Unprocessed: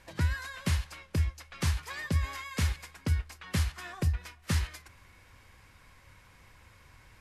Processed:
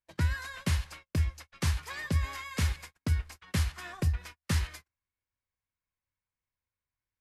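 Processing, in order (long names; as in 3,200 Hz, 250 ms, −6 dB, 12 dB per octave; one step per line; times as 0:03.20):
noise gate −45 dBFS, range −38 dB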